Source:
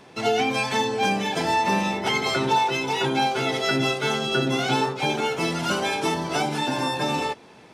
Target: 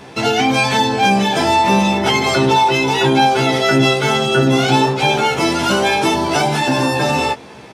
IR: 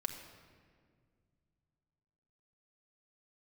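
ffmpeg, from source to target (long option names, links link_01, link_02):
-filter_complex "[0:a]equalizer=frequency=90:width_type=o:width=0.46:gain=8.5,asplit=2[link_01][link_02];[link_02]adelay=15,volume=-4dB[link_03];[link_01][link_03]amix=inputs=2:normalize=0,asplit=2[link_04][link_05];[link_05]alimiter=limit=-20dB:level=0:latency=1,volume=0.5dB[link_06];[link_04][link_06]amix=inputs=2:normalize=0,volume=3.5dB"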